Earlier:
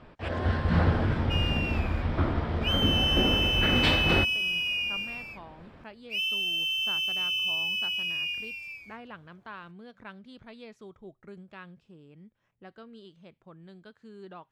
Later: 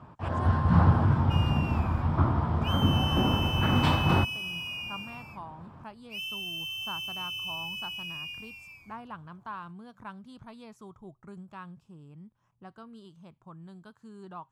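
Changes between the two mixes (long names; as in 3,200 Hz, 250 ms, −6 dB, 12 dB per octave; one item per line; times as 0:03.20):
speech: remove low-pass filter 2,800 Hz 6 dB per octave
first sound: add high-pass filter 64 Hz
master: add octave-band graphic EQ 125/500/1,000/2,000/4,000 Hz +8/−7/+10/−9/−7 dB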